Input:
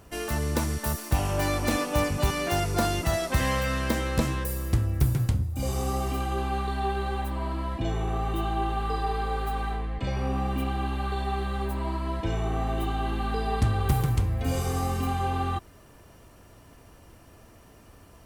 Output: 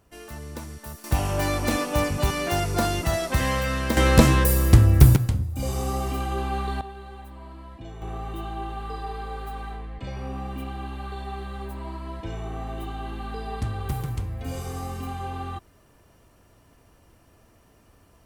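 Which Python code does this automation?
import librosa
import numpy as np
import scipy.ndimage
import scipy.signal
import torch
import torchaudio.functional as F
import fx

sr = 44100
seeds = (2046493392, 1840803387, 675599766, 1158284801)

y = fx.gain(x, sr, db=fx.steps((0.0, -10.0), (1.04, 1.5), (3.97, 10.5), (5.16, 1.0), (6.81, -11.5), (8.02, -5.0)))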